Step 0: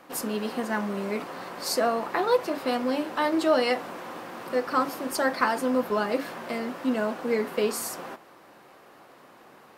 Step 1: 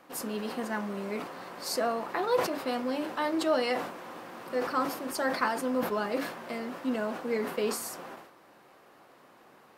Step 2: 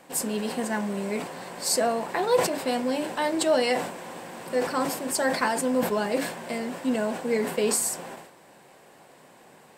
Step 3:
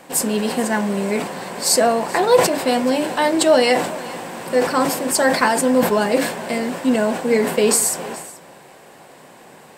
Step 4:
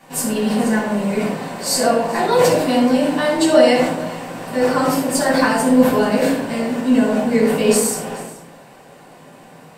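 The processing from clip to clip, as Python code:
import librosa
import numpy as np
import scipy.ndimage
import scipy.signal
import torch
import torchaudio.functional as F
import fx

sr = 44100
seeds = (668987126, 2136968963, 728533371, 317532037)

y1 = fx.sustainer(x, sr, db_per_s=79.0)
y1 = F.gain(torch.from_numpy(y1), -5.0).numpy()
y2 = fx.graphic_eq_31(y1, sr, hz=(160, 315, 1250, 8000), db=(5, -4, -10, 12))
y2 = F.gain(torch.from_numpy(y2), 5.5).numpy()
y3 = y2 + 10.0 ** (-19.0 / 20.0) * np.pad(y2, (int(429 * sr / 1000.0), 0))[:len(y2)]
y3 = F.gain(torch.from_numpy(y3), 8.5).numpy()
y4 = fx.room_shoebox(y3, sr, seeds[0], volume_m3=1000.0, walls='furnished', distance_m=9.7)
y4 = F.gain(torch.from_numpy(y4), -10.5).numpy()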